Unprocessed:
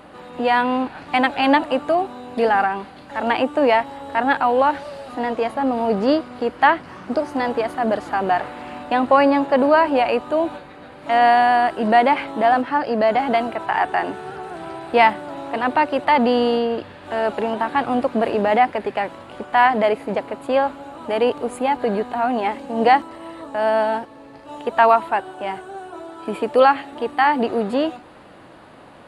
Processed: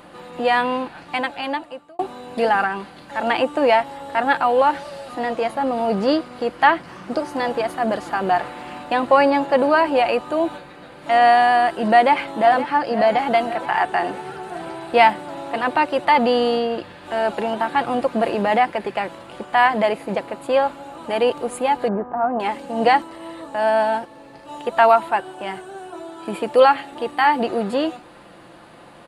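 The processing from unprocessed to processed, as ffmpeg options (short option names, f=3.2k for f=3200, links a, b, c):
-filter_complex "[0:a]asplit=2[a][b];[b]afade=t=in:st=11.93:d=0.01,afade=t=out:st=12.75:d=0.01,aecho=0:1:520|1040|1560|2080|2600|3120|3640|4160:0.223872|0.145517|0.094586|0.0614809|0.0399626|0.0259757|0.0168842|0.0109747[c];[a][c]amix=inputs=2:normalize=0,asettb=1/sr,asplit=3[d][e][f];[d]atrim=end=21.884[g];[e]atrim=start=21.88:end=22.4,asetpts=PTS-STARTPTS,afade=t=in:d=0.004:c=qsin,afade=t=out:st=0.516:d=0.004:c=qsin,lowpass=f=1.4k:w=0.5412,lowpass=f=1.4k:w=1.3066[h];[f]atrim=start=22.396[i];[g][h]acrossfade=d=0.004:c1=hsin:c2=qsin[j];[j][i]acrossfade=d=0.004:c1=qsin:c2=hsin,asplit=2[k][l];[k]atrim=end=1.99,asetpts=PTS-STARTPTS,afade=t=out:st=0.62:d=1.37[m];[l]atrim=start=1.99,asetpts=PTS-STARTPTS,afade=t=in:d=0.004:c=hsin[n];[m][n]concat=n=2:v=0:a=1,highshelf=f=4.1k:g=6,aecho=1:1:5.8:0.35,volume=-1dB"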